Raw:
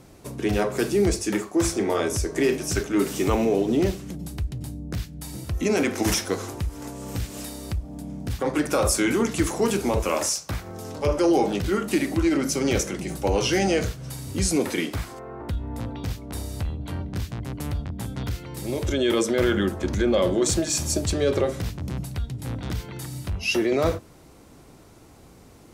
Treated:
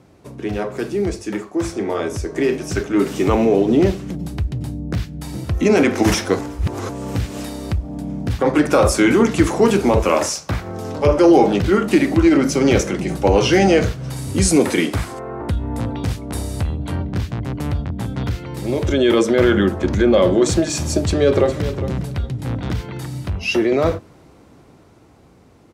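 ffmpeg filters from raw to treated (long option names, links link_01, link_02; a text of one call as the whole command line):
ffmpeg -i in.wav -filter_complex "[0:a]asettb=1/sr,asplit=3[link_01][link_02][link_03];[link_01]atrim=end=14.164[link_04];[link_02]atrim=start=14.16:end=16.96,asetpts=PTS-STARTPTS,afade=type=in:duration=0.004:curve=qsin,afade=type=out:start_time=2.796:duration=0.004:curve=qsin,equalizer=frequency=9500:width=1:gain=9[link_05];[link_03]atrim=start=16.956[link_06];[link_04][link_05]acrossfade=duration=0.004:curve1=hsin:curve2=qsin[link_07];[link_07][link_06]acrossfade=duration=0.004:curve1=qsin:curve2=hsin,asplit=2[link_08][link_09];[link_09]afade=type=in:start_time=20.94:duration=0.01,afade=type=out:start_time=21.62:duration=0.01,aecho=0:1:410|820:0.237137|0.0474275[link_10];[link_08][link_10]amix=inputs=2:normalize=0,asplit=3[link_11][link_12][link_13];[link_11]atrim=end=6.392[link_14];[link_12]atrim=start=6.388:end=6.892,asetpts=PTS-STARTPTS,areverse[link_15];[link_13]atrim=start=6.888[link_16];[link_14][link_15]acrossfade=duration=0.004:curve1=hsin:curve2=hsin[link_17];[link_17][link_16]acrossfade=duration=0.004:curve1=hsin:curve2=hsin,lowpass=frequency=2900:poles=1,dynaudnorm=framelen=190:gausssize=31:maxgain=11.5dB,highpass=57" out.wav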